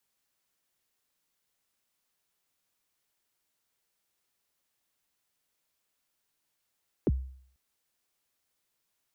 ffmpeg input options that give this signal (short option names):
-f lavfi -i "aevalsrc='0.106*pow(10,-3*t/0.58)*sin(2*PI*(480*0.035/log(65/480)*(exp(log(65/480)*min(t,0.035)/0.035)-1)+65*max(t-0.035,0)))':d=0.49:s=44100"